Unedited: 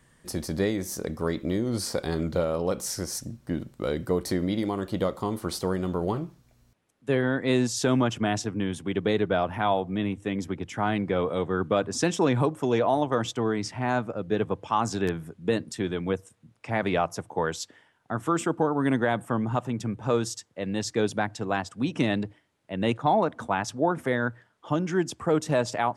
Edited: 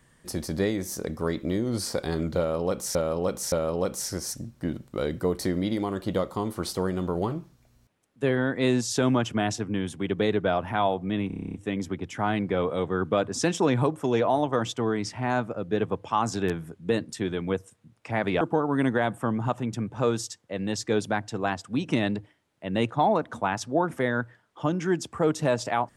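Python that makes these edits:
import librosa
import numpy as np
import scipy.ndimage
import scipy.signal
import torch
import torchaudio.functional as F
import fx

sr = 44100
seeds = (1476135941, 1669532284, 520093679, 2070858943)

y = fx.edit(x, sr, fx.repeat(start_s=2.38, length_s=0.57, count=3),
    fx.stutter(start_s=10.13, slice_s=0.03, count=10),
    fx.cut(start_s=17.0, length_s=1.48), tone=tone)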